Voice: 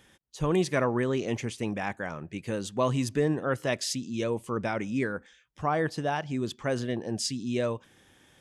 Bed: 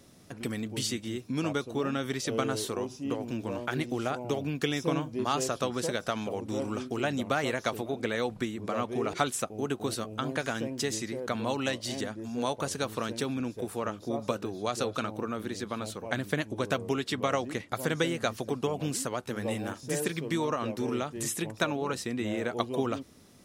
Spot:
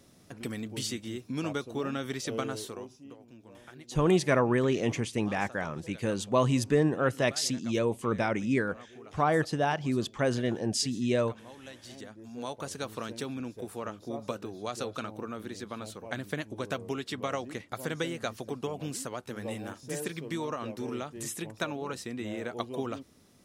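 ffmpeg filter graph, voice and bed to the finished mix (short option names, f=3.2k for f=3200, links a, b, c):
-filter_complex "[0:a]adelay=3550,volume=1.5dB[a];[1:a]volume=11.5dB,afade=t=out:st=2.3:d=0.85:silence=0.158489,afade=t=in:st=11.61:d=1.24:silence=0.199526[b];[a][b]amix=inputs=2:normalize=0"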